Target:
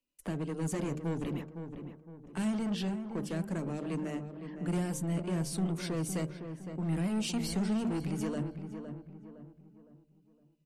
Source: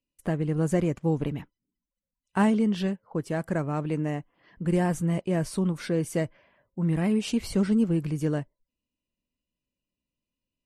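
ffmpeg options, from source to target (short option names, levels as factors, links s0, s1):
-filter_complex "[0:a]equalizer=f=93:t=o:w=0.47:g=-14.5,bandreject=f=75.73:t=h:w=4,bandreject=f=151.46:t=h:w=4,bandreject=f=227.19:t=h:w=4,bandreject=f=302.92:t=h:w=4,bandreject=f=378.65:t=h:w=4,bandreject=f=454.38:t=h:w=4,bandreject=f=530.11:t=h:w=4,bandreject=f=605.84:t=h:w=4,bandreject=f=681.57:t=h:w=4,bandreject=f=757.3:t=h:w=4,bandreject=f=833.03:t=h:w=4,bandreject=f=908.76:t=h:w=4,bandreject=f=984.49:t=h:w=4,bandreject=f=1060.22:t=h:w=4,bandreject=f=1135.95:t=h:w=4,bandreject=f=1211.68:t=h:w=4,bandreject=f=1287.41:t=h:w=4,bandreject=f=1363.14:t=h:w=4,bandreject=f=1438.87:t=h:w=4,bandreject=f=1514.6:t=h:w=4,bandreject=f=1590.33:t=h:w=4,acrossover=split=190|540|2600[s0][s1][s2][s3];[s0]flanger=delay=16.5:depth=4.6:speed=1.7[s4];[s1]volume=53.1,asoftclip=hard,volume=0.0188[s5];[s2]acompressor=threshold=0.00355:ratio=6[s6];[s4][s5][s6][s3]amix=inputs=4:normalize=0,asoftclip=type=tanh:threshold=0.0596,asplit=2[s7][s8];[s8]adelay=511,lowpass=f=1600:p=1,volume=0.398,asplit=2[s9][s10];[s10]adelay=511,lowpass=f=1600:p=1,volume=0.42,asplit=2[s11][s12];[s12]adelay=511,lowpass=f=1600:p=1,volume=0.42,asplit=2[s13][s14];[s14]adelay=511,lowpass=f=1600:p=1,volume=0.42,asplit=2[s15][s16];[s16]adelay=511,lowpass=f=1600:p=1,volume=0.42[s17];[s7][s9][s11][s13][s15][s17]amix=inputs=6:normalize=0"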